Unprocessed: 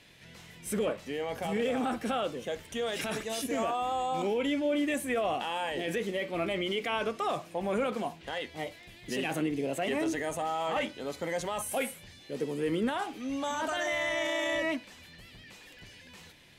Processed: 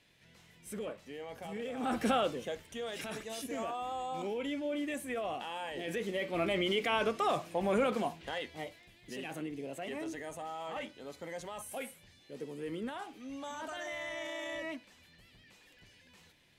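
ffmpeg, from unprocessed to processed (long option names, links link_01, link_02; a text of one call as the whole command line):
ffmpeg -i in.wav -af "volume=10.5dB,afade=type=in:start_time=1.77:duration=0.26:silence=0.223872,afade=type=out:start_time=2.03:duration=0.61:silence=0.316228,afade=type=in:start_time=5.73:duration=0.87:silence=0.421697,afade=type=out:start_time=7.95:duration=0.98:silence=0.316228" out.wav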